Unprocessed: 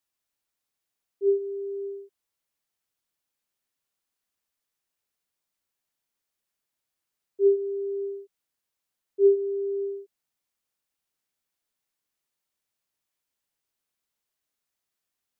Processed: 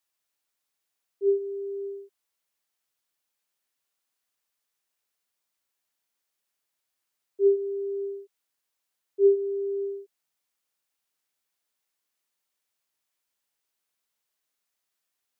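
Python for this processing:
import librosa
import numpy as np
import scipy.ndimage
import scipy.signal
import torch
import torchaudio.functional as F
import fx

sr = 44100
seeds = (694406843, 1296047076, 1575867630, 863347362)

y = fx.low_shelf(x, sr, hz=300.0, db=-8.5)
y = y * 10.0 ** (2.5 / 20.0)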